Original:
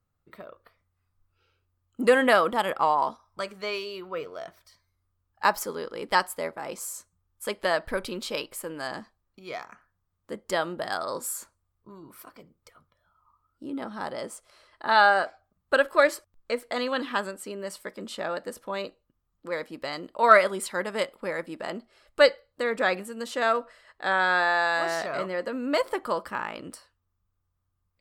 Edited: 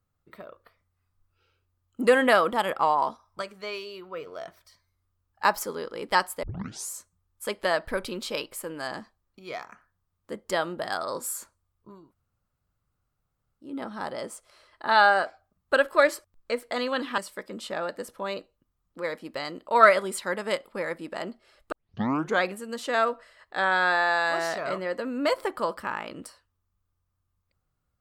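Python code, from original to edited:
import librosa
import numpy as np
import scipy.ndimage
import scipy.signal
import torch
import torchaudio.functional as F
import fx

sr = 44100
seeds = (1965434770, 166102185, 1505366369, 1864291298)

y = fx.edit(x, sr, fx.clip_gain(start_s=3.42, length_s=0.85, db=-3.5),
    fx.tape_start(start_s=6.43, length_s=0.47),
    fx.room_tone_fill(start_s=12.02, length_s=1.65, crossfade_s=0.24),
    fx.cut(start_s=17.18, length_s=0.48),
    fx.tape_start(start_s=22.2, length_s=0.7), tone=tone)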